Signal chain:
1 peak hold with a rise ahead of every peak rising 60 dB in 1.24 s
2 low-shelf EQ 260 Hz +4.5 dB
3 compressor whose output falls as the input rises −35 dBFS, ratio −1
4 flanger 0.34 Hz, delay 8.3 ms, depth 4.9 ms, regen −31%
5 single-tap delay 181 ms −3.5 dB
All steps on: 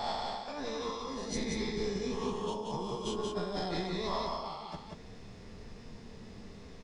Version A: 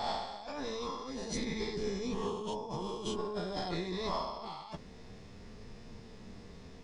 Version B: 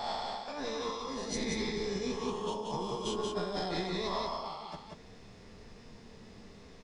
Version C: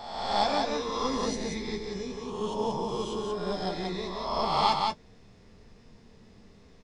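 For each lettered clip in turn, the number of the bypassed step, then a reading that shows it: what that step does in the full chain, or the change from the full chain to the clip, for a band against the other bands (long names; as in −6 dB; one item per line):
5, change in crest factor +1.5 dB
2, 125 Hz band −2.5 dB
3, change in crest factor +5.0 dB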